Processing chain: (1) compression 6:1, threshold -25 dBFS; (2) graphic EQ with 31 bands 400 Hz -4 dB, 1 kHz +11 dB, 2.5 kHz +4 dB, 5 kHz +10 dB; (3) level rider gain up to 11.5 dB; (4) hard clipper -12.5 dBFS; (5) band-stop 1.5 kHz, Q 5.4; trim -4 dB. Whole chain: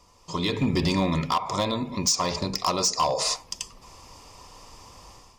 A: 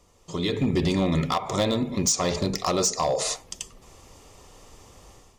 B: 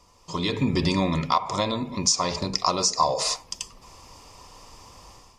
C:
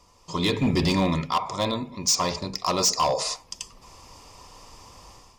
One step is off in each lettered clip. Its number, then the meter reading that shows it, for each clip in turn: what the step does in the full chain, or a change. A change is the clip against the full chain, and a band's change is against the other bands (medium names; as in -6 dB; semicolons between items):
2, momentary loudness spread change +2 LU; 4, distortion -14 dB; 1, mean gain reduction 4.5 dB